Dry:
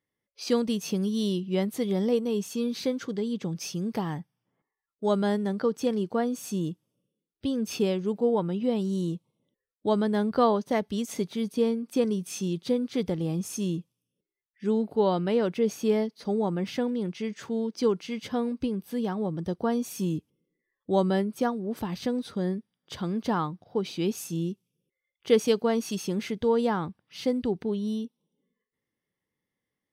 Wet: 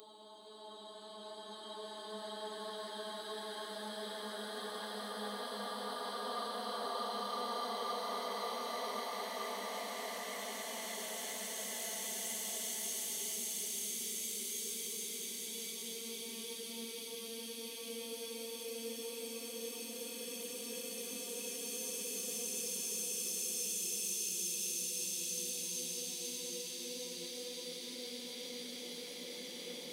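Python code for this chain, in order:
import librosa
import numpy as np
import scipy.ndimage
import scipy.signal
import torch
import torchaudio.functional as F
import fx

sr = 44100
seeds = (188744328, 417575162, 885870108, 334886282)

y = fx.paulstretch(x, sr, seeds[0], factor=8.7, window_s=1.0, from_s=9.57)
y = np.diff(y, prepend=0.0)
y = y * librosa.db_to_amplitude(4.5)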